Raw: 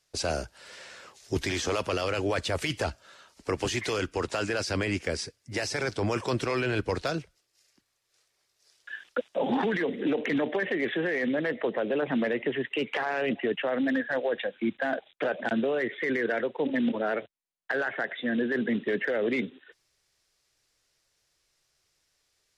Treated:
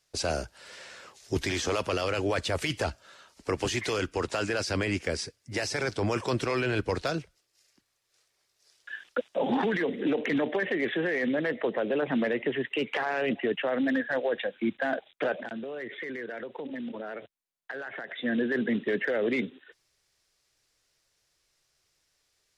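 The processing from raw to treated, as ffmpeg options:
-filter_complex "[0:a]asettb=1/sr,asplit=3[s0][s1][s2];[s0]atrim=end=15.374[s3];[s1]atrim=start=15.37:end=18.16,asetpts=PTS-STARTPTS,afade=t=in:d=0.004:c=qsin,afade=t=out:st=2.786:d=0.004:c=qsin,acompressor=threshold=0.02:ratio=6:attack=3.2:release=140:knee=1:detection=peak[s4];[s2]atrim=start=18.156[s5];[s3][s4]acrossfade=d=0.004:c1=hsin:c2=qsin[s6];[s6][s5]acrossfade=d=0.004:c1=qsin:c2=hsin"

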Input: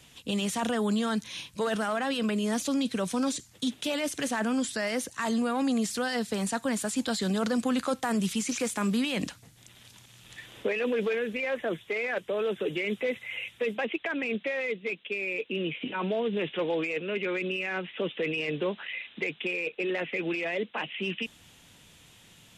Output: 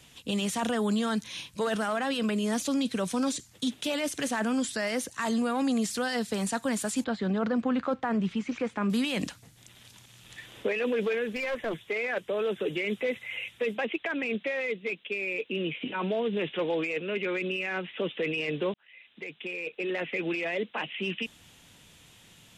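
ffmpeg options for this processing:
-filter_complex "[0:a]asettb=1/sr,asplit=3[s0][s1][s2];[s0]atrim=end=7.044[s3];[s1]atrim=start=7.04:end=8.9,asetpts=PTS-STARTPTS,afade=t=in:d=0.004:c=qsin,afade=t=out:st=1.856:d=0.004:c=qsin,lowpass=2100[s4];[s2]atrim=start=8.896[s5];[s3][s4]acrossfade=d=0.004:c1=hsin:c2=qsin[s6];[s6][s5]acrossfade=d=0.004:c1=qsin:c2=hsin,asettb=1/sr,asplit=3[s7][s8][s9];[s7]atrim=end=11.274[s10];[s8]atrim=start=11.27:end=11.85,asetpts=PTS-STARTPTS,afade=t=in:d=0.004:c=qsin,afade=t=out:st=0.576:d=0.004:c=qsin,aeval=exprs='clip(val(0),-1,0.0299)':c=same[s11];[s9]atrim=start=11.846[s12];[s10][s11]acrossfade=d=0.004:c1=hsin:c2=qsin[s13];[s13][s12]acrossfade=d=0.004:c1=qsin:c2=hsin,asplit=2[s14][s15];[s14]atrim=end=18.74,asetpts=PTS-STARTPTS,afade=t=out:st=18.736:d=0.004:c=hsin[s16];[s15]atrim=start=18.74,asetpts=PTS-STARTPTS,afade=t=in:d=1.35[s17];[s16][s17]concat=n=2:v=0:a=1"

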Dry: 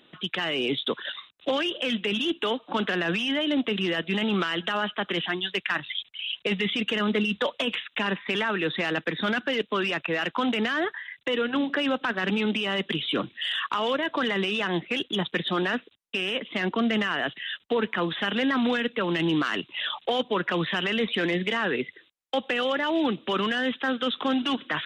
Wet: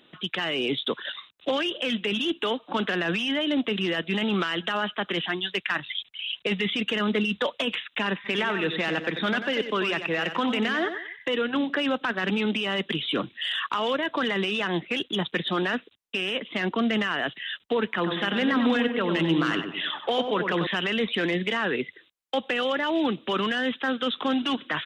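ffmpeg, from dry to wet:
-filter_complex "[0:a]asplit=3[s0][s1][s2];[s0]afade=t=out:st=8.24:d=0.02[s3];[s1]aecho=1:1:92|184|276:0.355|0.106|0.0319,afade=t=in:st=8.24:d=0.02,afade=t=out:st=11.31:d=0.02[s4];[s2]afade=t=in:st=11.31:d=0.02[s5];[s3][s4][s5]amix=inputs=3:normalize=0,asettb=1/sr,asplit=3[s6][s7][s8];[s6]atrim=end=17.944[s9];[s7]atrim=start=17.94:end=20.67,asetpts=PTS-STARTPTS,afade=t=in:d=0.004:c=qsin,afade=t=out:st=2.726:d=0.004:c=qsin,asplit=2[s10][s11];[s11]adelay=96,lowpass=f=1500:p=1,volume=0.562,asplit=2[s12][s13];[s13]adelay=96,lowpass=f=1500:p=1,volume=0.49,asplit=2[s14][s15];[s15]adelay=96,lowpass=f=1500:p=1,volume=0.49,asplit=2[s16][s17];[s17]adelay=96,lowpass=f=1500:p=1,volume=0.49,asplit=2[s18][s19];[s19]adelay=96,lowpass=f=1500:p=1,volume=0.49,asplit=2[s20][s21];[s21]adelay=96,lowpass=f=1500:p=1,volume=0.49[s22];[s10][s12][s14][s16][s18][s20][s22]amix=inputs=7:normalize=0,atrim=end_sample=120393[s23];[s8]atrim=start=20.666[s24];[s9][s23]acrossfade=d=0.004:c1=hsin:c2=qsin[s25];[s25][s24]acrossfade=d=0.004:c1=qsin:c2=hsin"

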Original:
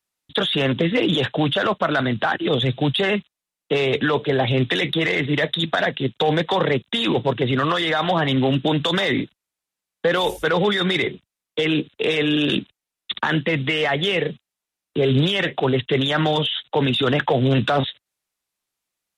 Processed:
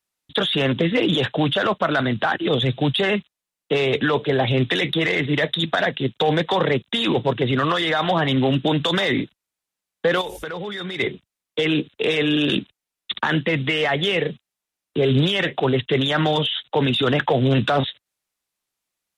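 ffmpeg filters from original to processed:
-filter_complex "[0:a]asettb=1/sr,asplit=3[s0][s1][s2];[s0]atrim=end=10.214[s3];[s1]atrim=start=10.21:end=11,asetpts=PTS-STARTPTS,afade=t=in:d=0.004:c=qsin,afade=t=out:st=0.786:d=0.004:c=qsin,acompressor=threshold=0.0447:ratio=6:attack=3.2:release=140:knee=1:detection=peak[s4];[s2]atrim=start=10.996[s5];[s3][s4]acrossfade=d=0.004:c1=hsin:c2=qsin[s6];[s6][s5]acrossfade=d=0.004:c1=qsin:c2=hsin"

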